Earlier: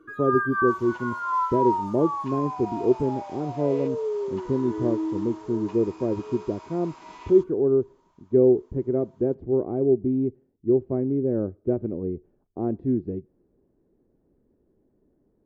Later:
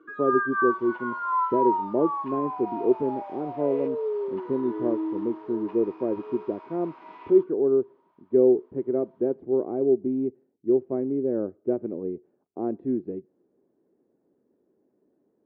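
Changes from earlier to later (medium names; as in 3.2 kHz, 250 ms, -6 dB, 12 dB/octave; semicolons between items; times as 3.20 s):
second sound: add distance through air 190 m; master: add band-pass 250–3000 Hz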